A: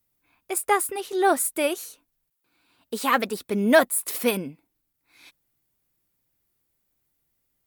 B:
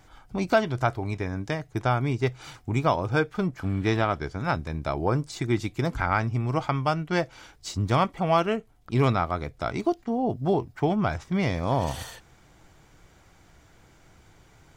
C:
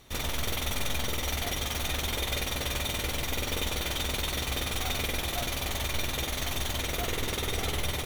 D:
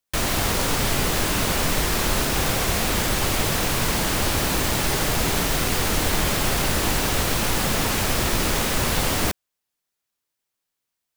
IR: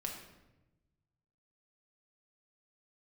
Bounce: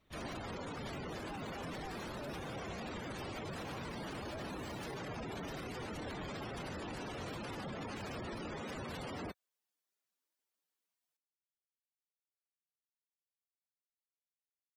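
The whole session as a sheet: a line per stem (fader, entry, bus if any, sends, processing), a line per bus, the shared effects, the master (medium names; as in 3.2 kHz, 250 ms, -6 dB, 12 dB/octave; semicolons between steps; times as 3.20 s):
-2.5 dB, 0.60 s, no send, harmonic-percussive separation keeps harmonic; inverse Chebyshev high-pass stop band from 200 Hz, stop band 60 dB; slew-rate limiter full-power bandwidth 23 Hz
mute
-15.0 dB, 0.00 s, no send, low-pass 2.8 kHz 12 dB/octave; whisper effect
-7.5 dB, 0.00 s, no send, high-pass 280 Hz 6 dB/octave; spectral gate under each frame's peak -10 dB strong; bass shelf 400 Hz +9.5 dB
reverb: none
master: peak limiter -35.5 dBFS, peak gain reduction 16.5 dB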